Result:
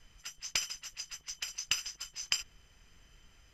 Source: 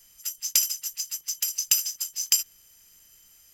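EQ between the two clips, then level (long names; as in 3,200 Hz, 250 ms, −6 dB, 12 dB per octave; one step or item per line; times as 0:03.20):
low-pass filter 2,600 Hz 12 dB per octave
low-shelf EQ 110 Hz +10.5 dB
+4.0 dB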